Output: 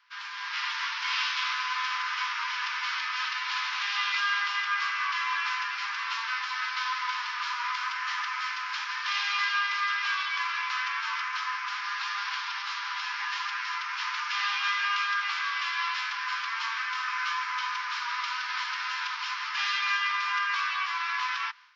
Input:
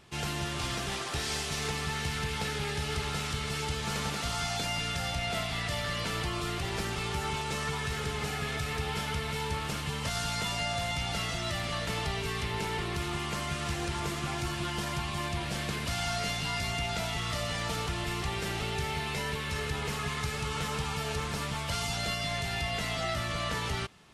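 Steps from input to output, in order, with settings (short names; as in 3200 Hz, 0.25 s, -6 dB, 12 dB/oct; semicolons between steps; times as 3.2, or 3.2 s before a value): AGC gain up to 9 dB; speed mistake 78 rpm record played at 45 rpm; Chebyshev low-pass 5500 Hz, order 4; time stretch by phase-locked vocoder 0.52×; steep high-pass 930 Hz 96 dB/oct; notch 1900 Hz, Q 23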